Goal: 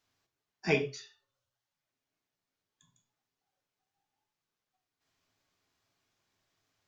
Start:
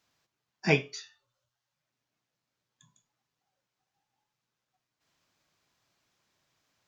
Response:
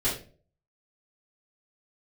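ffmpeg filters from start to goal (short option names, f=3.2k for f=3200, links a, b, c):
-filter_complex "[0:a]asplit=2[a][b];[1:a]atrim=start_sample=2205,atrim=end_sample=6174[c];[b][c]afir=irnorm=-1:irlink=0,volume=-13.5dB[d];[a][d]amix=inputs=2:normalize=0,volume=-6dB"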